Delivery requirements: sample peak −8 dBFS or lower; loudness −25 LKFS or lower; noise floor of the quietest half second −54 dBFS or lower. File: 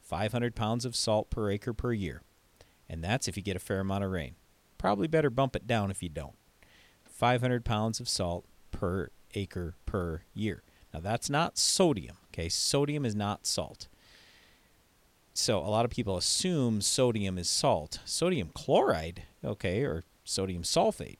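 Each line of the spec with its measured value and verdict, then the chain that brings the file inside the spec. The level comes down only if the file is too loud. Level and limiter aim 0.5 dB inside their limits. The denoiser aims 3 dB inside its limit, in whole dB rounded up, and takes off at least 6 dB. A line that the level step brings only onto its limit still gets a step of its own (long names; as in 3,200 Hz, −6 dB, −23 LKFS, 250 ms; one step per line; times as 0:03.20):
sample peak −11.5 dBFS: in spec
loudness −30.5 LKFS: in spec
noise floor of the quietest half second −66 dBFS: in spec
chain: no processing needed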